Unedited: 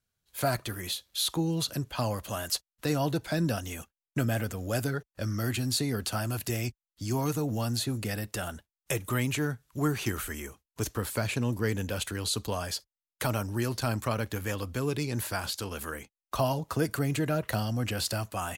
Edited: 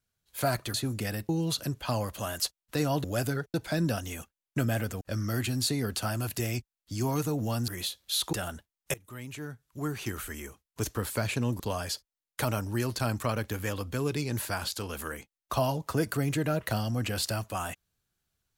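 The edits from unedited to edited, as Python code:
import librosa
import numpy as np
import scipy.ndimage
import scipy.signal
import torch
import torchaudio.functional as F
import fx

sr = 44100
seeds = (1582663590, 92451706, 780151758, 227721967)

y = fx.edit(x, sr, fx.swap(start_s=0.74, length_s=0.65, other_s=7.78, other_length_s=0.55),
    fx.move(start_s=4.61, length_s=0.5, to_s=3.14),
    fx.fade_in_from(start_s=8.94, length_s=1.87, floor_db=-21.0),
    fx.cut(start_s=11.6, length_s=0.82), tone=tone)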